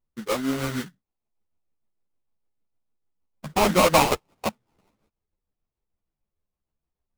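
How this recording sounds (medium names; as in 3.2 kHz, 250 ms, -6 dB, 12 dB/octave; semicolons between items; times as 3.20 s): tremolo triangle 6.6 Hz, depth 50%; aliases and images of a low sample rate 1.7 kHz, jitter 20%; a shimmering, thickened sound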